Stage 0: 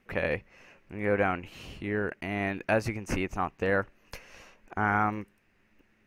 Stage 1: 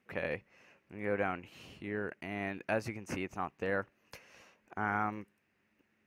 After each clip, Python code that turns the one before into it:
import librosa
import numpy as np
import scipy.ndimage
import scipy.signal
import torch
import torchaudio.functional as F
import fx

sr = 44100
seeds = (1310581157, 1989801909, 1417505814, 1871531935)

y = scipy.signal.sosfilt(scipy.signal.butter(2, 100.0, 'highpass', fs=sr, output='sos'), x)
y = y * librosa.db_to_amplitude(-7.0)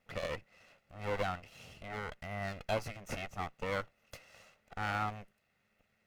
y = fx.lower_of_two(x, sr, delay_ms=1.5)
y = y * librosa.db_to_amplitude(1.0)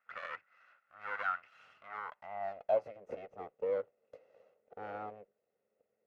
y = fx.dynamic_eq(x, sr, hz=2300.0, q=1.1, threshold_db=-49.0, ratio=4.0, max_db=3)
y = fx.filter_sweep_bandpass(y, sr, from_hz=1400.0, to_hz=470.0, start_s=1.71, end_s=3.05, q=4.8)
y = y * librosa.db_to_amplitude(7.5)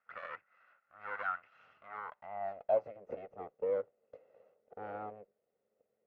y = fx.lowpass(x, sr, hz=1500.0, slope=6)
y = y * librosa.db_to_amplitude(1.0)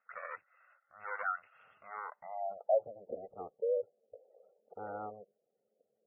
y = fx.spec_gate(x, sr, threshold_db=-20, keep='strong')
y = y * librosa.db_to_amplitude(1.0)